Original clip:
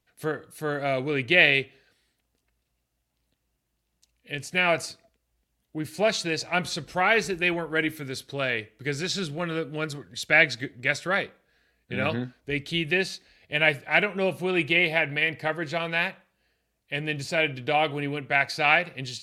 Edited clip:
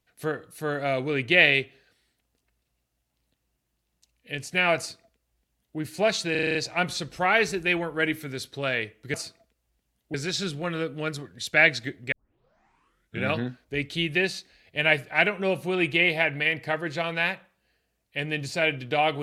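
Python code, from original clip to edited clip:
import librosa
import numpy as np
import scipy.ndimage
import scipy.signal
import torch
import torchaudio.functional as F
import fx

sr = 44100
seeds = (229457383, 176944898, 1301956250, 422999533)

y = fx.edit(x, sr, fx.duplicate(start_s=4.78, length_s=1.0, to_s=8.9),
    fx.stutter(start_s=6.31, slice_s=0.04, count=7),
    fx.tape_start(start_s=10.88, length_s=1.12), tone=tone)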